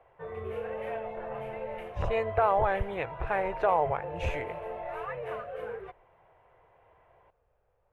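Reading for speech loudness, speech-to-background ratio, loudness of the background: -30.0 LUFS, 8.5 dB, -38.5 LUFS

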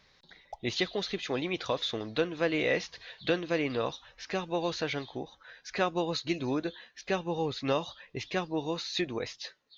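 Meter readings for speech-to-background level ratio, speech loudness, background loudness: 18.0 dB, -32.5 LUFS, -50.5 LUFS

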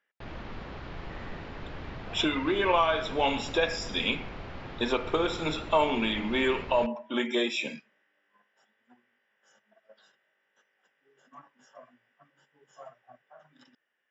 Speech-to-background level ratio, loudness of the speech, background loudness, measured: 14.5 dB, -28.0 LUFS, -42.5 LUFS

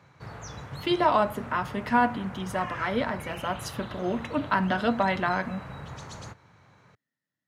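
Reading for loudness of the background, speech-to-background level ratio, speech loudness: -40.5 LUFS, 12.5 dB, -28.0 LUFS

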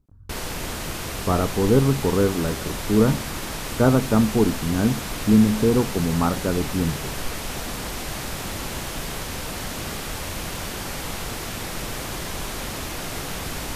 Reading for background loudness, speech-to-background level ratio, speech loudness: -30.0 LUFS, 8.5 dB, -21.5 LUFS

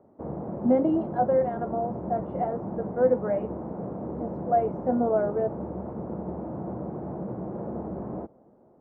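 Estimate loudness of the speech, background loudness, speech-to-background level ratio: -27.0 LUFS, -35.0 LUFS, 8.0 dB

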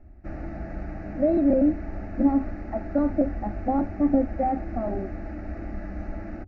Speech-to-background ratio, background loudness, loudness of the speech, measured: 11.5 dB, -37.0 LUFS, -25.5 LUFS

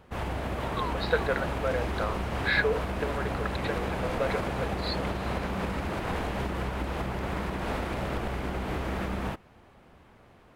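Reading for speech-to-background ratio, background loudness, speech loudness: 0.0 dB, -32.5 LUFS, -32.5 LUFS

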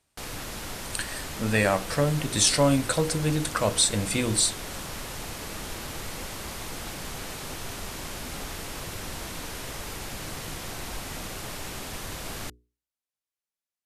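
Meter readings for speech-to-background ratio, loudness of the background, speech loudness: 11.5 dB, -36.0 LUFS, -24.5 LUFS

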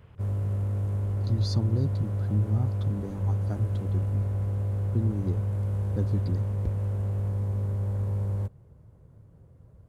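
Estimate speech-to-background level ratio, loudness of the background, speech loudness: -2.5 dB, -29.5 LUFS, -32.0 LUFS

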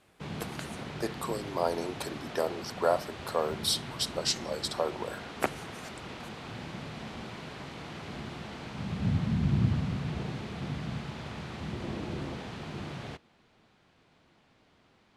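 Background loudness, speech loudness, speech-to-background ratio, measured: -37.0 LUFS, -33.0 LUFS, 4.0 dB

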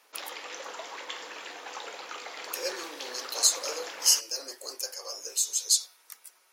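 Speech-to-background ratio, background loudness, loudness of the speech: 12.0 dB, -39.5 LUFS, -27.5 LUFS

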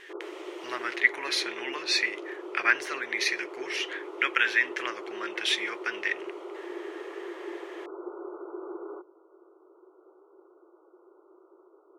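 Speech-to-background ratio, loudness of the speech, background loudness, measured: 12.0 dB, -28.5 LUFS, -40.5 LUFS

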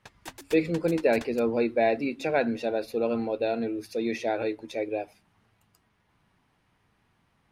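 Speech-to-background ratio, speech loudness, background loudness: 17.5 dB, -28.0 LUFS, -45.5 LUFS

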